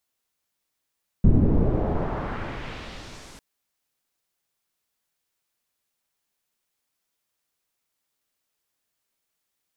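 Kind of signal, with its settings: swept filtered noise pink, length 2.15 s lowpass, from 200 Hz, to 9400 Hz, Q 1.1, exponential, gain ramp -33.5 dB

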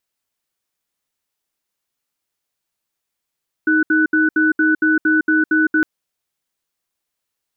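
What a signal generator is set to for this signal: cadence 313 Hz, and 1490 Hz, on 0.16 s, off 0.07 s, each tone -14.5 dBFS 2.16 s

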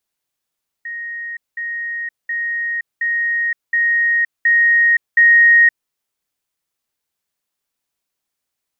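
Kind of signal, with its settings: level ladder 1870 Hz -24.5 dBFS, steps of 3 dB, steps 7, 0.52 s 0.20 s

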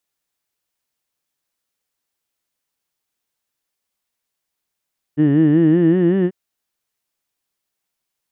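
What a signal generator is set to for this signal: formant vowel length 1.14 s, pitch 143 Hz, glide +5 st, vibrato depth 1.1 st, F1 320 Hz, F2 1800 Hz, F3 2900 Hz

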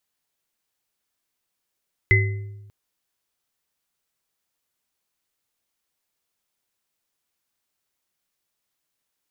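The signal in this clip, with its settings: sine partials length 0.59 s, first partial 103 Hz, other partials 381/2040 Hz, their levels -9/2 dB, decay 1.15 s, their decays 0.79/0.43 s, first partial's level -14 dB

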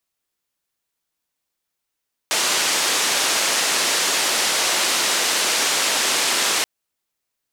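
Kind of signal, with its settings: noise band 330–7400 Hz, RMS -20 dBFS 4.33 s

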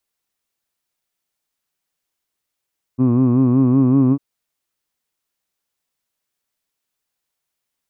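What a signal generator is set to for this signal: formant vowel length 1.20 s, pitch 123 Hz, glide +1.5 st, F1 280 Hz, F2 1100 Hz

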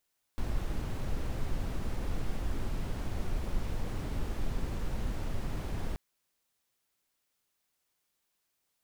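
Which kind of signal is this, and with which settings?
noise brown, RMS -31.5 dBFS 5.58 s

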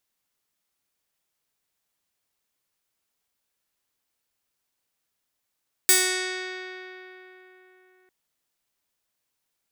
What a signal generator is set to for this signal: plucked string F#4, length 2.20 s, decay 3.85 s, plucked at 0.36, bright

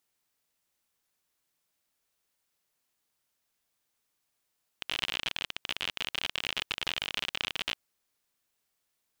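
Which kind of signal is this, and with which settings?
random clicks 54/s -15 dBFS 2.93 s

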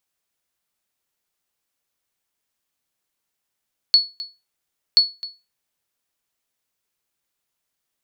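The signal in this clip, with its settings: sonar ping 4400 Hz, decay 0.26 s, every 1.03 s, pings 2, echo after 0.26 s, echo -18 dB -5.5 dBFS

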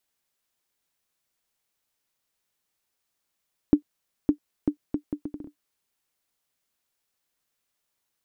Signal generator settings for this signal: bouncing ball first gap 0.56 s, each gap 0.69, 295 Hz, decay 94 ms -6.5 dBFS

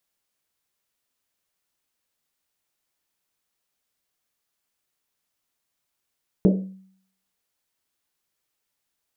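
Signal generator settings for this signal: Risset drum, pitch 190 Hz, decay 0.63 s, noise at 400 Hz, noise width 350 Hz, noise 30%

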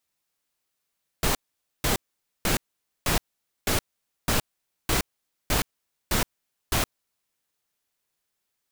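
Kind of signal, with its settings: noise bursts pink, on 0.12 s, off 0.49 s, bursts 10, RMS -23 dBFS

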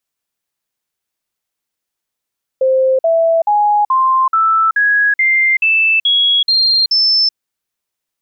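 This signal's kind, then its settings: stepped sine 524 Hz up, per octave 3, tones 11, 0.38 s, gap 0.05 s -9 dBFS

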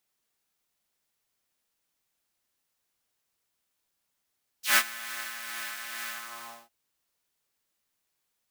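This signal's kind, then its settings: synth patch with tremolo A#3, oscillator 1 triangle, oscillator 2 saw, interval -12 st, detune 13 cents, oscillator 2 level -7 dB, sub -5 dB, noise -11 dB, filter highpass, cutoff 710 Hz, Q 2.3, filter envelope 3 oct, filter decay 0.07 s, attack 0.137 s, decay 0.06 s, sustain -17.5 dB, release 0.59 s, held 1.47 s, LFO 2.3 Hz, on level 3.5 dB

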